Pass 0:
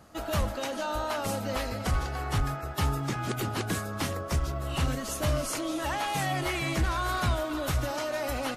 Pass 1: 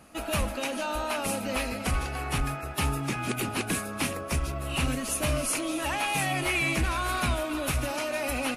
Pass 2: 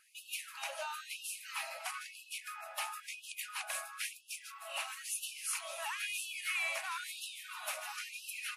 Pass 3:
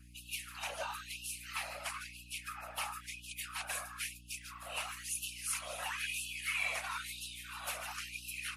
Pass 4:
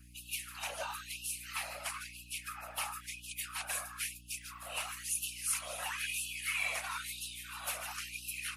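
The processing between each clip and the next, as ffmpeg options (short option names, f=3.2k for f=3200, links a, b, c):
-af "equalizer=f=100:t=o:w=0.33:g=-9,equalizer=f=250:t=o:w=0.33:g=5,equalizer=f=2.5k:t=o:w=0.33:g=11,equalizer=f=10k:t=o:w=0.33:g=11"
-af "afftfilt=real='re*gte(b*sr/1024,540*pow(2600/540,0.5+0.5*sin(2*PI*1*pts/sr)))':imag='im*gte(b*sr/1024,540*pow(2600/540,0.5+0.5*sin(2*PI*1*pts/sr)))':win_size=1024:overlap=0.75,volume=-7.5dB"
-af "afftfilt=real='hypot(re,im)*cos(2*PI*random(0))':imag='hypot(re,im)*sin(2*PI*random(1))':win_size=512:overlap=0.75,aeval=exprs='val(0)+0.000794*(sin(2*PI*60*n/s)+sin(2*PI*2*60*n/s)/2+sin(2*PI*3*60*n/s)/3+sin(2*PI*4*60*n/s)/4+sin(2*PI*5*60*n/s)/5)':c=same,volume=6dB"
-af "highshelf=f=8.5k:g=6.5"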